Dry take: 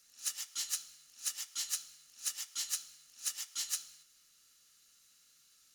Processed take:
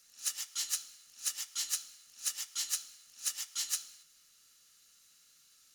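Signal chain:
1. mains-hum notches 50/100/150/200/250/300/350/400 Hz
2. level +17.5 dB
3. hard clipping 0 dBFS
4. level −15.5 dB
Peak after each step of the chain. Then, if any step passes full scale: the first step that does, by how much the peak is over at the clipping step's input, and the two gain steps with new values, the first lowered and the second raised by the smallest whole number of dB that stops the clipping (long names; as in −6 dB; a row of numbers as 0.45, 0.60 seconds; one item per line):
−21.5, −4.0, −4.0, −19.5 dBFS
no step passes full scale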